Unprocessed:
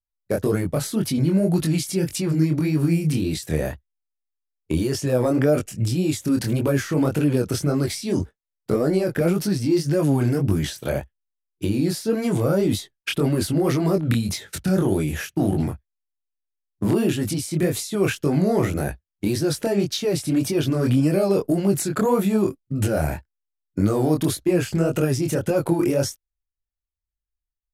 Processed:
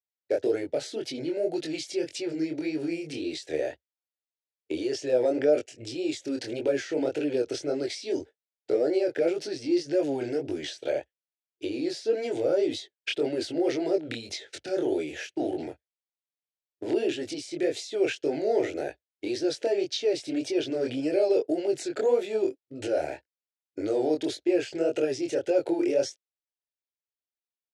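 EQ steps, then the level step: BPF 340–7600 Hz; air absorption 90 m; fixed phaser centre 460 Hz, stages 4; 0.0 dB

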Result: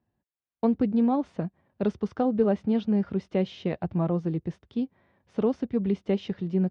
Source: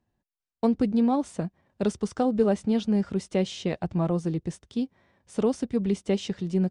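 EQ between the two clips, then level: HPF 60 Hz; air absorption 270 m; 0.0 dB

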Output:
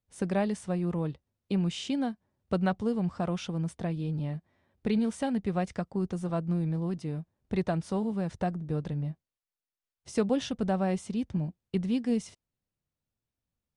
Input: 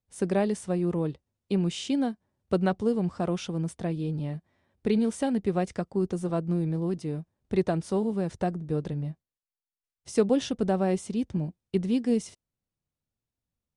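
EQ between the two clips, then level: high shelf 6500 Hz -7.5 dB; dynamic EQ 380 Hz, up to -7 dB, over -39 dBFS, Q 1.4; 0.0 dB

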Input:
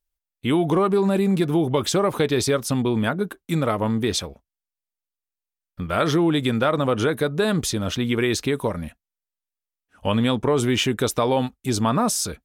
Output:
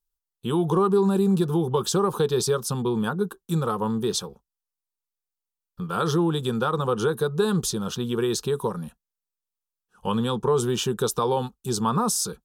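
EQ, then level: fixed phaser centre 420 Hz, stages 8; 0.0 dB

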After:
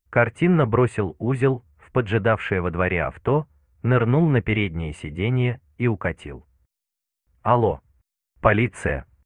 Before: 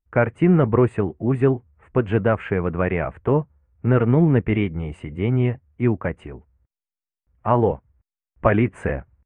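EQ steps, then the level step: dynamic EQ 260 Hz, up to -4 dB, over -26 dBFS, Q 0.99; high shelf 2300 Hz +11.5 dB; 0.0 dB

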